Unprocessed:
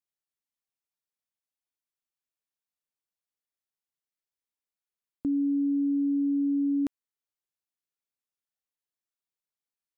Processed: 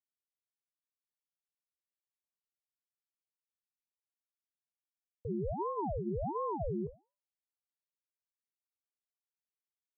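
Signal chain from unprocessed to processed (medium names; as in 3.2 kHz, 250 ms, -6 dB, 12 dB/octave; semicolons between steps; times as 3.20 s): cascade formant filter u; flange 0.62 Hz, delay 3.8 ms, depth 9.7 ms, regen -77%; ring modulator with a swept carrier 430 Hz, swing 85%, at 1.4 Hz; trim -1 dB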